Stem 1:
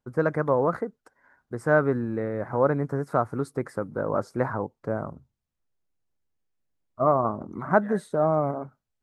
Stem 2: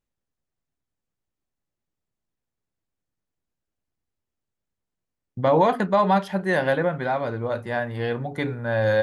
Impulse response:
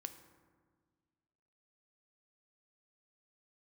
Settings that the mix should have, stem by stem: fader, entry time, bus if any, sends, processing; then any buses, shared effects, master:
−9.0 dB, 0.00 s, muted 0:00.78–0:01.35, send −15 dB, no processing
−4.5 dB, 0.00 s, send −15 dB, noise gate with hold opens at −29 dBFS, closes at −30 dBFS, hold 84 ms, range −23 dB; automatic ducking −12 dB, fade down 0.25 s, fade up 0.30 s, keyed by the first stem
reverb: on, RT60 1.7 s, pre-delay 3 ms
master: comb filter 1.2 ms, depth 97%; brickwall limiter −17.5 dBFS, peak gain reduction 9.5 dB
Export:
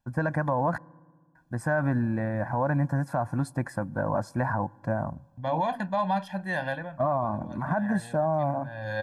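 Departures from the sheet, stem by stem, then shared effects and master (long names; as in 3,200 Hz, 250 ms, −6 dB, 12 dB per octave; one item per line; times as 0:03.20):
stem 1 −9.0 dB → −0.5 dB
stem 2 −4.5 dB → −11.0 dB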